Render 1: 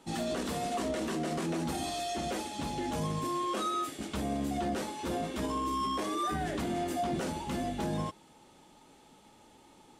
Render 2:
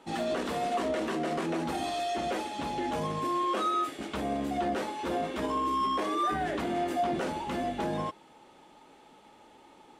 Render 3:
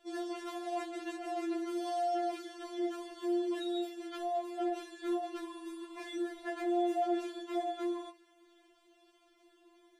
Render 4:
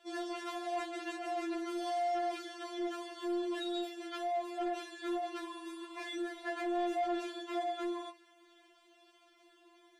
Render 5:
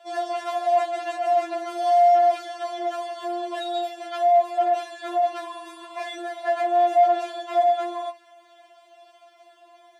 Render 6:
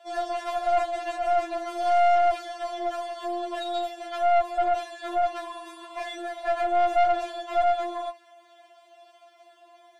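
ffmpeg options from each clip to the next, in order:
-af "bass=f=250:g=-9,treble=f=4k:g=-10,volume=4.5dB"
-af "afftfilt=real='re*4*eq(mod(b,16),0)':imag='im*4*eq(mod(b,16),0)':win_size=2048:overlap=0.75,volume=-5.5dB"
-filter_complex "[0:a]asplit=2[a][b];[b]highpass=f=720:p=1,volume=14dB,asoftclip=type=tanh:threshold=-22.5dB[c];[a][c]amix=inputs=2:normalize=0,lowpass=f=5.7k:p=1,volume=-6dB,volume=-4dB"
-af "highpass=f=620:t=q:w=5.3,volume=6.5dB"
-af "aeval=exprs='(tanh(6.31*val(0)+0.45)-tanh(0.45))/6.31':c=same"

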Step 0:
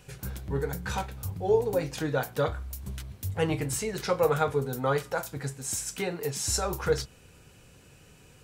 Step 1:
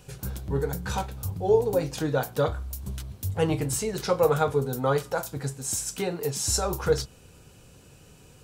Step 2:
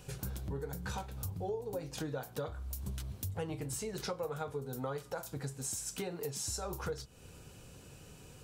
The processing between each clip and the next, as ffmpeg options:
-af "equalizer=f=2k:t=o:w=0.94:g=-6,volume=3dB"
-af "acompressor=threshold=-35dB:ratio=6,volume=-1.5dB"

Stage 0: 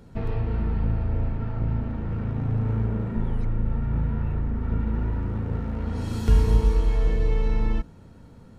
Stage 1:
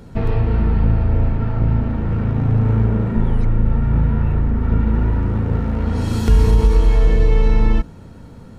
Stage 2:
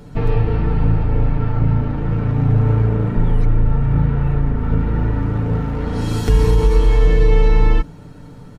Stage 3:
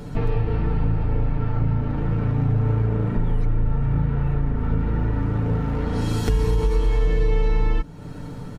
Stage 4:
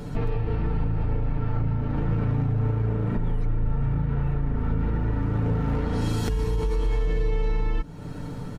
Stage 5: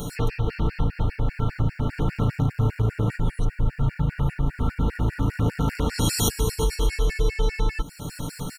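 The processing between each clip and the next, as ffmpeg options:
-af "alimiter=level_in=12.5dB:limit=-1dB:release=50:level=0:latency=1,volume=-3.5dB"
-af "aecho=1:1:6.8:0.6"
-af "acompressor=threshold=-29dB:ratio=2,volume=4dB"
-af "alimiter=limit=-16.5dB:level=0:latency=1:release=121"
-af "crystalizer=i=6:c=0,afftfilt=real='re*gt(sin(2*PI*5*pts/sr)*(1-2*mod(floor(b*sr/1024/1400),2)),0)':imag='im*gt(sin(2*PI*5*pts/sr)*(1-2*mod(floor(b*sr/1024/1400),2)),0)':win_size=1024:overlap=0.75,volume=3.5dB"

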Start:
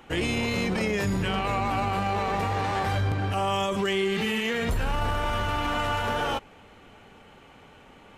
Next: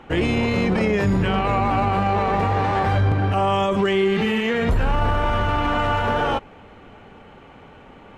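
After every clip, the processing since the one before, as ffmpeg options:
-af "lowpass=f=1.7k:p=1,volume=7.5dB"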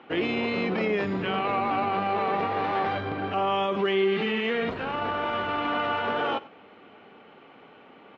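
-af "highpass=270,equalizer=f=550:t=q:w=4:g=-3,equalizer=f=900:t=q:w=4:g=-4,equalizer=f=1.7k:t=q:w=4:g=-3,lowpass=f=4.3k:w=0.5412,lowpass=f=4.3k:w=1.3066,aecho=1:1:93:0.1,volume=-3dB"

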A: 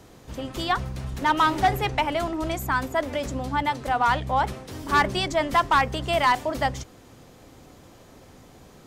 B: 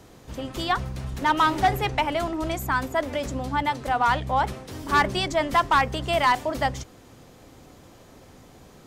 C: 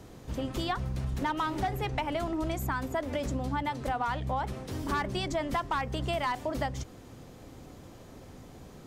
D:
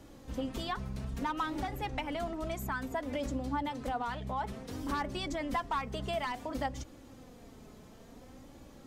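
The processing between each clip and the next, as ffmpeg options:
-af anull
-af "lowshelf=f=460:g=5.5,acompressor=threshold=-25dB:ratio=6,volume=-3dB"
-af "flanger=delay=3.5:depth=1.2:regen=29:speed=0.58:shape=sinusoidal"

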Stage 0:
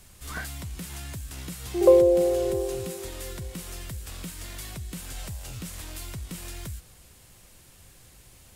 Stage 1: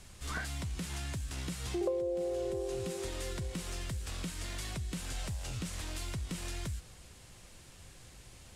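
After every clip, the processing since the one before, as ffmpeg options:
-af "lowpass=8.3k,acompressor=threshold=-33dB:ratio=5"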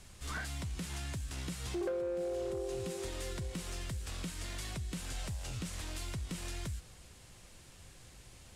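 -af "asoftclip=type=hard:threshold=-30dB,volume=-1.5dB"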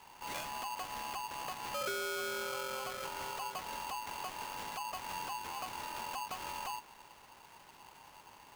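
-af "acrusher=samples=11:mix=1:aa=0.000001,aeval=exprs='val(0)*sgn(sin(2*PI*920*n/s))':c=same,volume=-2dB"

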